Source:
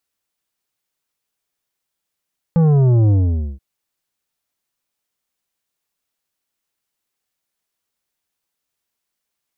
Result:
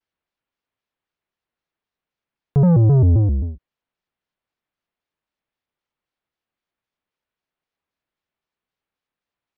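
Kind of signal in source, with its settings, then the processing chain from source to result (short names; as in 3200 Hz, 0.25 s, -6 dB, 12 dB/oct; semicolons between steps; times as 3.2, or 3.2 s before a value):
sub drop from 170 Hz, over 1.03 s, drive 9.5 dB, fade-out 0.49 s, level -11 dB
air absorption 280 m; shaped vibrato square 3.8 Hz, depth 250 cents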